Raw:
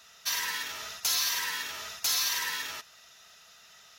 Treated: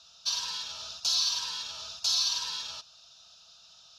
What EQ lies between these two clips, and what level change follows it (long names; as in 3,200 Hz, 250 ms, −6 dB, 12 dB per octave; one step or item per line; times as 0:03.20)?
low-pass with resonance 4,500 Hz, resonance Q 2.1
parametric band 920 Hz −5 dB 2 octaves
phaser with its sweep stopped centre 820 Hz, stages 4
+1.0 dB